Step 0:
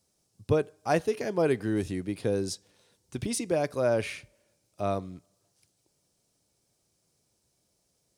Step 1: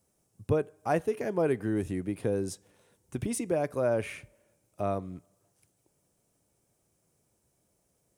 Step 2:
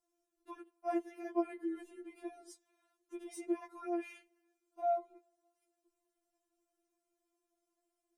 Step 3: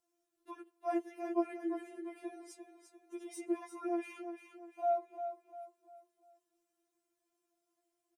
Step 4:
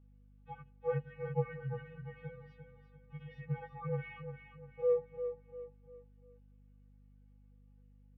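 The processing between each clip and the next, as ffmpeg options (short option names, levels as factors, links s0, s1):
-filter_complex "[0:a]equalizer=f=4500:t=o:w=1.1:g=-12,asplit=2[s0][s1];[s1]acompressor=threshold=0.02:ratio=6,volume=1.12[s2];[s0][s2]amix=inputs=2:normalize=0,volume=0.631"
-af "highshelf=f=2700:g=-9.5,afftfilt=real='re*4*eq(mod(b,16),0)':imag='im*4*eq(mod(b,16),0)':win_size=2048:overlap=0.75,volume=0.562"
-filter_complex "[0:a]highpass=f=73:p=1,asplit=2[s0][s1];[s1]aecho=0:1:348|696|1044|1392:0.355|0.135|0.0512|0.0195[s2];[s0][s2]amix=inputs=2:normalize=0,volume=1.12"
-af "highpass=f=370:t=q:w=0.5412,highpass=f=370:t=q:w=1.307,lowpass=f=3200:t=q:w=0.5176,lowpass=f=3200:t=q:w=0.7071,lowpass=f=3200:t=q:w=1.932,afreqshift=-200,aeval=exprs='val(0)+0.000794*(sin(2*PI*50*n/s)+sin(2*PI*2*50*n/s)/2+sin(2*PI*3*50*n/s)/3+sin(2*PI*4*50*n/s)/4+sin(2*PI*5*50*n/s)/5)':c=same,volume=1.26"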